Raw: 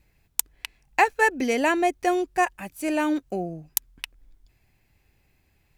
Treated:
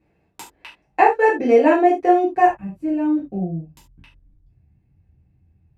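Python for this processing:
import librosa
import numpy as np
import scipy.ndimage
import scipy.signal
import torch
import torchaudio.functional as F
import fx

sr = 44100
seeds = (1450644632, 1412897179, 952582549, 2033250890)

y = fx.bandpass_q(x, sr, hz=fx.steps((0.0, 450.0), (2.47, 110.0)), q=1.0)
y = fx.rev_gated(y, sr, seeds[0], gate_ms=110, shape='falling', drr_db=-7.0)
y = F.gain(torch.from_numpy(y), 3.5).numpy()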